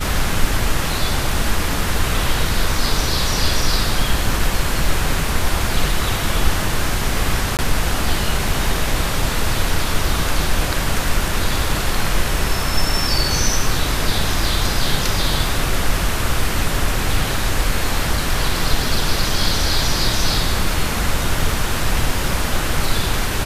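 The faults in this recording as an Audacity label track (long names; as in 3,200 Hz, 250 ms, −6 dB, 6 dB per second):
7.570000	7.590000	drop-out 18 ms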